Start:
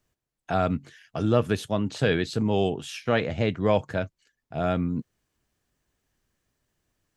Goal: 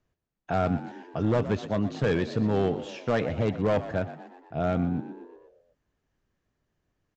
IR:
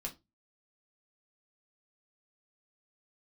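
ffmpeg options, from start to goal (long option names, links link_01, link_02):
-filter_complex "[0:a]highshelf=frequency=2900:gain=-11.5,aresample=16000,asoftclip=type=hard:threshold=-18dB,aresample=44100,asplit=7[link_01][link_02][link_03][link_04][link_05][link_06][link_07];[link_02]adelay=121,afreqshift=57,volume=-14dB[link_08];[link_03]adelay=242,afreqshift=114,volume=-19dB[link_09];[link_04]adelay=363,afreqshift=171,volume=-24.1dB[link_10];[link_05]adelay=484,afreqshift=228,volume=-29.1dB[link_11];[link_06]adelay=605,afreqshift=285,volume=-34.1dB[link_12];[link_07]adelay=726,afreqshift=342,volume=-39.2dB[link_13];[link_01][link_08][link_09][link_10][link_11][link_12][link_13]amix=inputs=7:normalize=0"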